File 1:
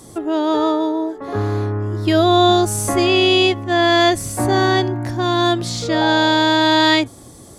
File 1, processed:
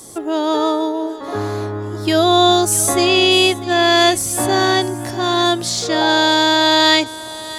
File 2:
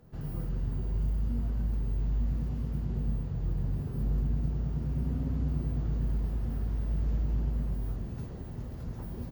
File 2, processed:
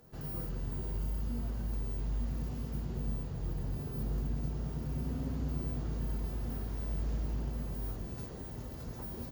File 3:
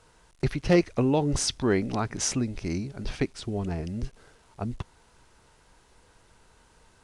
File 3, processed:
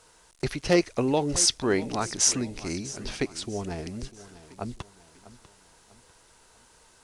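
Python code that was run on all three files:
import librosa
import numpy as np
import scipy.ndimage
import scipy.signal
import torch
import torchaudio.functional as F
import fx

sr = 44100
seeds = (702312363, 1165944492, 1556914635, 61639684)

p1 = fx.bass_treble(x, sr, bass_db=-7, treble_db=7)
p2 = p1 + fx.echo_feedback(p1, sr, ms=646, feedback_pct=40, wet_db=-17.0, dry=0)
y = p2 * librosa.db_to_amplitude(1.0)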